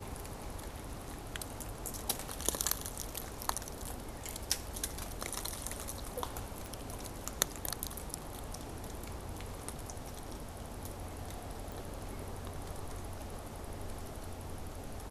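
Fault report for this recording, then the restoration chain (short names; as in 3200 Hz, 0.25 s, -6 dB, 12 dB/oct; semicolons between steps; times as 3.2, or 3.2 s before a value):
6.66 pop
11.72 pop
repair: de-click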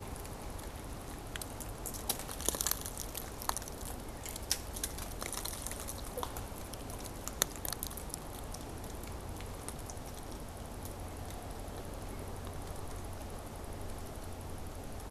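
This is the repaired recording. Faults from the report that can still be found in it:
11.72 pop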